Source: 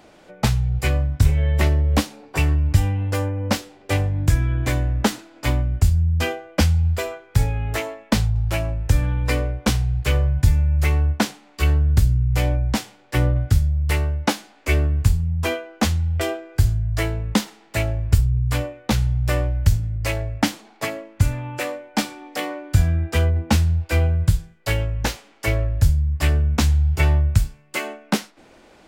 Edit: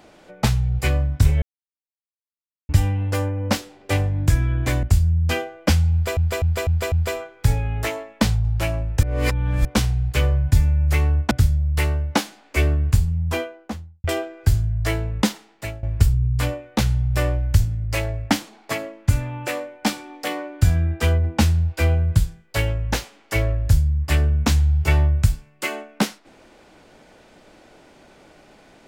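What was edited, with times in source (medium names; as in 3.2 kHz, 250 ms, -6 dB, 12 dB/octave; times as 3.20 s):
1.42–2.69 s: mute
4.83–5.74 s: delete
6.83–7.08 s: loop, 5 plays
8.94–9.56 s: reverse
11.22–13.43 s: delete
15.31–16.16 s: studio fade out
17.42–17.95 s: fade out, to -17 dB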